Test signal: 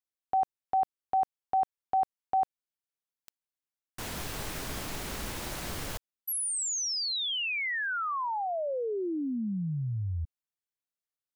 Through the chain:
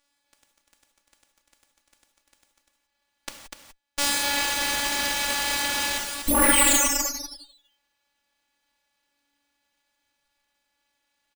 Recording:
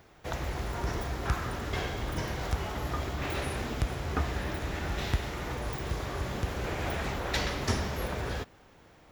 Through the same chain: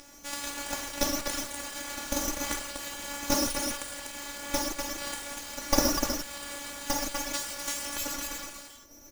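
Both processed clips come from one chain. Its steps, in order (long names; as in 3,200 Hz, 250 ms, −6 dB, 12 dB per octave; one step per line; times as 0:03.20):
phases set to zero 284 Hz
inverse Chebyshev band-stop filter 520–2,400 Hz, stop band 60 dB
first-order pre-emphasis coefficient 0.9
on a send: single-tap delay 246 ms −3.5 dB
on the sum: reverb whose tail is shaped and stops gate 200 ms flat, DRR −4.5 dB
reverb reduction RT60 1.1 s
spectral tilt +4.5 dB per octave
windowed peak hold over 3 samples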